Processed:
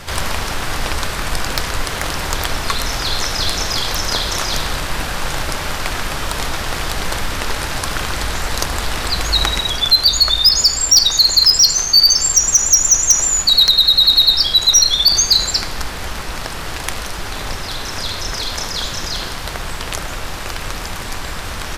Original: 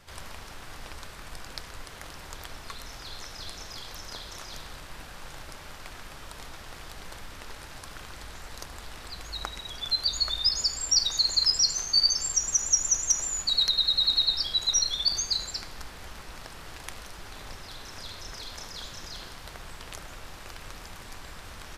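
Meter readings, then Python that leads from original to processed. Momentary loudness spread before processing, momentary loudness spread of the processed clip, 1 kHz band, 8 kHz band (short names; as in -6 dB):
22 LU, 17 LU, +19.5 dB, +13.5 dB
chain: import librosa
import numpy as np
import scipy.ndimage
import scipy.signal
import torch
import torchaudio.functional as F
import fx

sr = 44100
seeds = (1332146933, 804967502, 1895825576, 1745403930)

p1 = fx.rider(x, sr, range_db=10, speed_s=0.5)
p2 = x + (p1 * librosa.db_to_amplitude(0.5))
y = fx.fold_sine(p2, sr, drive_db=5, ceiling_db=-4.0)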